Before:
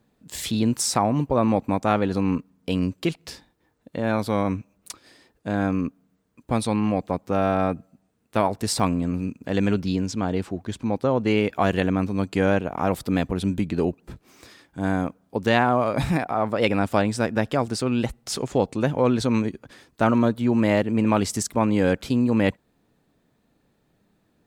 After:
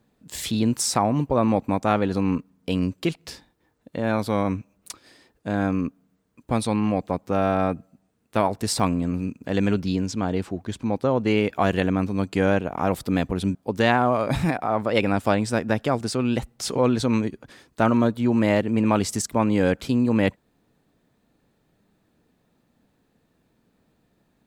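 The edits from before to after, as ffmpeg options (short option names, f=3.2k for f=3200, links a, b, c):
-filter_complex "[0:a]asplit=3[a][b][c];[a]atrim=end=13.552[d];[b]atrim=start=15.218:end=18.452[e];[c]atrim=start=18.988[f];[d][e]acrossfade=d=0.004:c1=hsin:c2=hsin[g];[g][f]acrossfade=d=0.004:c1=hsin:c2=hsin"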